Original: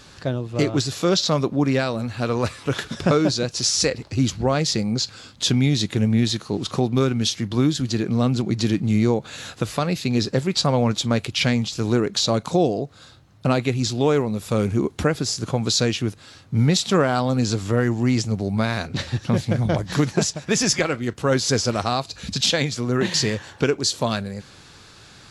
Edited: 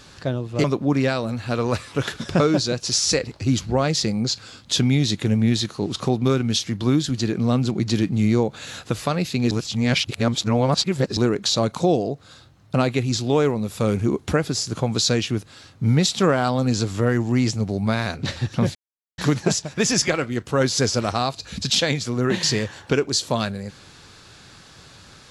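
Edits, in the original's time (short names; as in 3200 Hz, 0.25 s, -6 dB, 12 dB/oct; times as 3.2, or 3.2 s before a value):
0.64–1.35 cut
10.22–11.88 reverse
19.46–19.89 mute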